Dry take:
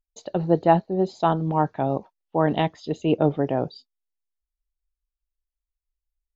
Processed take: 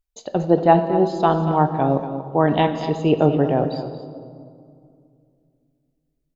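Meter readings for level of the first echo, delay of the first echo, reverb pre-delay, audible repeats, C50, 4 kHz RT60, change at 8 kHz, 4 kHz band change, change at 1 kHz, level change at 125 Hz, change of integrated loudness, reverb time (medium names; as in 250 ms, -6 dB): -12.0 dB, 234 ms, 3 ms, 1, 8.0 dB, 1.3 s, no reading, +4.0 dB, +4.5 dB, +4.5 dB, +4.5 dB, 2.3 s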